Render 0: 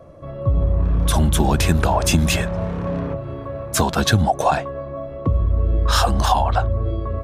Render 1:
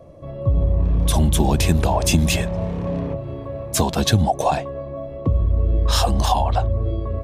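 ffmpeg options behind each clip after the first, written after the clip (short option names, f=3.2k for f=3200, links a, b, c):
-af "equalizer=f=1.4k:t=o:w=0.68:g=-10"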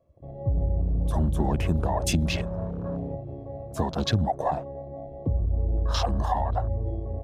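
-af "afwtdn=0.0398,volume=-7dB"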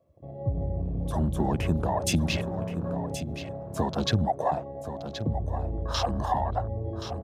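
-af "highpass=83,aecho=1:1:1075:0.299"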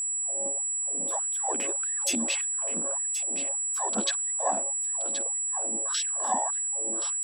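-af "asubboost=boost=8:cutoff=130,aeval=exprs='val(0)+0.0447*sin(2*PI*7800*n/s)':c=same,afftfilt=real='re*gte(b*sr/1024,200*pow(1700/200,0.5+0.5*sin(2*PI*1.7*pts/sr)))':imag='im*gte(b*sr/1024,200*pow(1700/200,0.5+0.5*sin(2*PI*1.7*pts/sr)))':win_size=1024:overlap=0.75"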